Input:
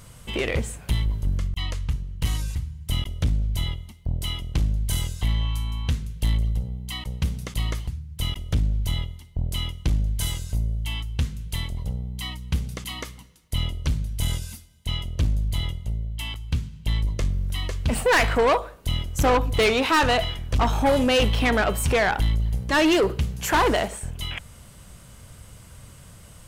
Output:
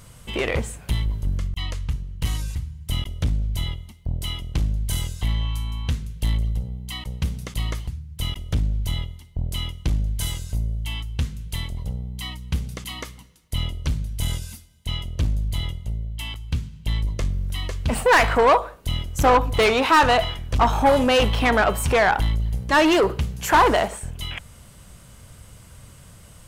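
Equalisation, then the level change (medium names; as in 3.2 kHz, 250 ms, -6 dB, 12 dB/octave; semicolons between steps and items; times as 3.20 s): dynamic bell 970 Hz, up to +6 dB, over -36 dBFS, Q 0.89; 0.0 dB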